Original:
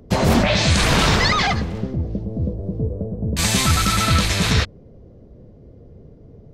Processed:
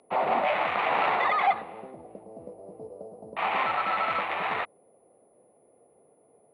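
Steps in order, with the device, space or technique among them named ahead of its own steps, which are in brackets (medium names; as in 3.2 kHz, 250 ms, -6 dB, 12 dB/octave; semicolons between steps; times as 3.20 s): toy sound module (decimation joined by straight lines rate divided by 8×; class-D stage that switches slowly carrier 10 kHz; cabinet simulation 760–3600 Hz, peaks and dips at 770 Hz +7 dB, 1.6 kHz -10 dB, 3.2 kHz -7 dB); trim -1.5 dB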